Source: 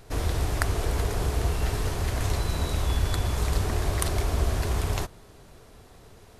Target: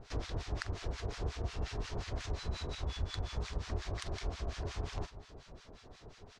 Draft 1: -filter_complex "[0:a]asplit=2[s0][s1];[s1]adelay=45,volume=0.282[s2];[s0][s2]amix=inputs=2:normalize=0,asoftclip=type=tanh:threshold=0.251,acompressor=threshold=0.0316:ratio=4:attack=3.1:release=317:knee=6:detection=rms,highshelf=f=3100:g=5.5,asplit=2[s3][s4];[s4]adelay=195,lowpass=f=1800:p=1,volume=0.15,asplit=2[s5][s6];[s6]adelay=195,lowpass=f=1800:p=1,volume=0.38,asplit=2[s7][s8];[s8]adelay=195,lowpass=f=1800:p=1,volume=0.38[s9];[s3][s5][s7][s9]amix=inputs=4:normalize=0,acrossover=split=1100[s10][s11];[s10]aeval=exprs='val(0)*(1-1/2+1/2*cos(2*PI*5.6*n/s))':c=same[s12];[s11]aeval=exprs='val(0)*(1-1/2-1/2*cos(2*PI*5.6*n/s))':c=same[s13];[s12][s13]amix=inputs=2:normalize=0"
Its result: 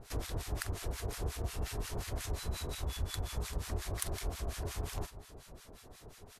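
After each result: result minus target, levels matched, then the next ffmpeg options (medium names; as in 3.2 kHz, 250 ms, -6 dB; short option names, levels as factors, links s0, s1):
saturation: distortion +20 dB; 8 kHz band +8.0 dB
-filter_complex "[0:a]asplit=2[s0][s1];[s1]adelay=45,volume=0.282[s2];[s0][s2]amix=inputs=2:normalize=0,asoftclip=type=tanh:threshold=1,acompressor=threshold=0.0316:ratio=4:attack=3.1:release=317:knee=6:detection=rms,highshelf=f=3100:g=5.5,asplit=2[s3][s4];[s4]adelay=195,lowpass=f=1800:p=1,volume=0.15,asplit=2[s5][s6];[s6]adelay=195,lowpass=f=1800:p=1,volume=0.38,asplit=2[s7][s8];[s8]adelay=195,lowpass=f=1800:p=1,volume=0.38[s9];[s3][s5][s7][s9]amix=inputs=4:normalize=0,acrossover=split=1100[s10][s11];[s10]aeval=exprs='val(0)*(1-1/2+1/2*cos(2*PI*5.6*n/s))':c=same[s12];[s11]aeval=exprs='val(0)*(1-1/2-1/2*cos(2*PI*5.6*n/s))':c=same[s13];[s12][s13]amix=inputs=2:normalize=0"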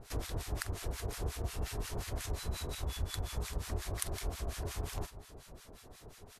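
8 kHz band +8.0 dB
-filter_complex "[0:a]asplit=2[s0][s1];[s1]adelay=45,volume=0.282[s2];[s0][s2]amix=inputs=2:normalize=0,asoftclip=type=tanh:threshold=1,acompressor=threshold=0.0316:ratio=4:attack=3.1:release=317:knee=6:detection=rms,lowpass=f=5900:w=0.5412,lowpass=f=5900:w=1.3066,highshelf=f=3100:g=5.5,asplit=2[s3][s4];[s4]adelay=195,lowpass=f=1800:p=1,volume=0.15,asplit=2[s5][s6];[s6]adelay=195,lowpass=f=1800:p=1,volume=0.38,asplit=2[s7][s8];[s8]adelay=195,lowpass=f=1800:p=1,volume=0.38[s9];[s3][s5][s7][s9]amix=inputs=4:normalize=0,acrossover=split=1100[s10][s11];[s10]aeval=exprs='val(0)*(1-1/2+1/2*cos(2*PI*5.6*n/s))':c=same[s12];[s11]aeval=exprs='val(0)*(1-1/2-1/2*cos(2*PI*5.6*n/s))':c=same[s13];[s12][s13]amix=inputs=2:normalize=0"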